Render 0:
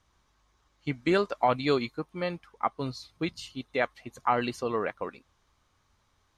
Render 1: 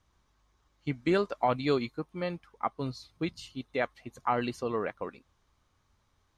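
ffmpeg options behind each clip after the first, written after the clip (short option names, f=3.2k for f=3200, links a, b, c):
-af "lowshelf=f=480:g=4,volume=-4dB"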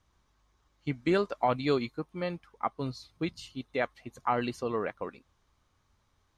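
-af anull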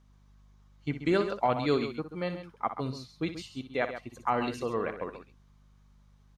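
-af "aeval=exprs='val(0)+0.001*(sin(2*PI*50*n/s)+sin(2*PI*2*50*n/s)/2+sin(2*PI*3*50*n/s)/3+sin(2*PI*4*50*n/s)/4+sin(2*PI*5*50*n/s)/5)':c=same,aecho=1:1:61.22|134.1:0.282|0.282"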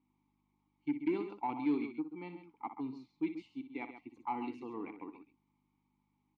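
-filter_complex "[0:a]asplit=3[a][b][c];[a]bandpass=f=300:t=q:w=8,volume=0dB[d];[b]bandpass=f=870:t=q:w=8,volume=-6dB[e];[c]bandpass=f=2.24k:t=q:w=8,volume=-9dB[f];[d][e][f]amix=inputs=3:normalize=0,asoftclip=type=tanh:threshold=-26.5dB,volume=3.5dB"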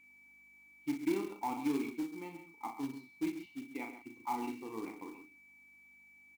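-filter_complex "[0:a]aeval=exprs='val(0)+0.00112*sin(2*PI*2300*n/s)':c=same,asplit=2[a][b];[b]adelay=36,volume=-5dB[c];[a][c]amix=inputs=2:normalize=0,acrusher=bits=4:mode=log:mix=0:aa=0.000001,volume=-1dB"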